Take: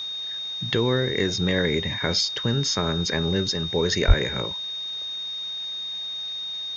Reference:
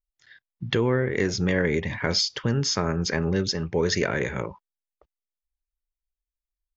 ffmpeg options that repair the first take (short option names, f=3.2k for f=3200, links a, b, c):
-filter_complex "[0:a]bandreject=f=3.7k:w=30,asplit=3[a][b][c];[a]afade=t=out:st=4.07:d=0.02[d];[b]highpass=f=140:w=0.5412,highpass=f=140:w=1.3066,afade=t=in:st=4.07:d=0.02,afade=t=out:st=4.19:d=0.02[e];[c]afade=t=in:st=4.19:d=0.02[f];[d][e][f]amix=inputs=3:normalize=0,afwtdn=0.005"